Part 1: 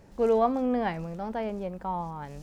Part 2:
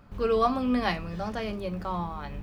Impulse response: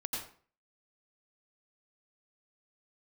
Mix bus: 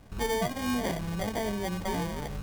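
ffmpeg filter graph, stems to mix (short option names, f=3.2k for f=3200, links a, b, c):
-filter_complex "[0:a]volume=-7.5dB[a];[1:a]acrusher=samples=33:mix=1:aa=0.000001,volume=1dB[b];[a][b]amix=inputs=2:normalize=0,acompressor=threshold=-26dB:ratio=6"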